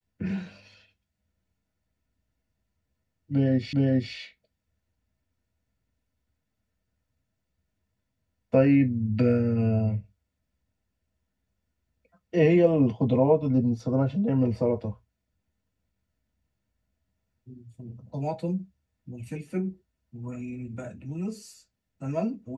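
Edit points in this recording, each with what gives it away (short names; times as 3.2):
3.73 repeat of the last 0.41 s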